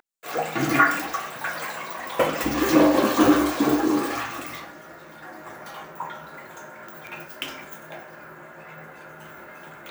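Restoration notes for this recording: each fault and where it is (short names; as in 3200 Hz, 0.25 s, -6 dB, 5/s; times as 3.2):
7.07 pop -22 dBFS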